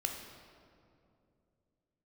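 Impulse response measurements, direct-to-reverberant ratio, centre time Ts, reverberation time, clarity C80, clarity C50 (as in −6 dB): 2.5 dB, 51 ms, 2.6 s, 6.5 dB, 5.0 dB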